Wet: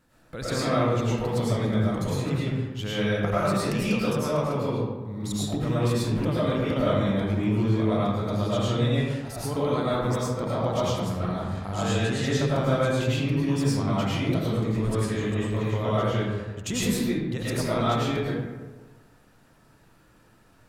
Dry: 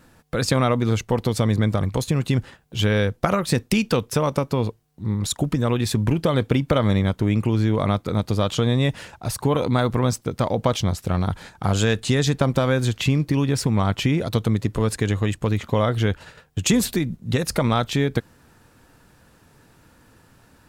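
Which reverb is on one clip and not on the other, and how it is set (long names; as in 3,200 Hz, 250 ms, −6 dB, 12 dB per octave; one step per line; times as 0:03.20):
comb and all-pass reverb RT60 1.3 s, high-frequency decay 0.5×, pre-delay 65 ms, DRR −9 dB
level −13 dB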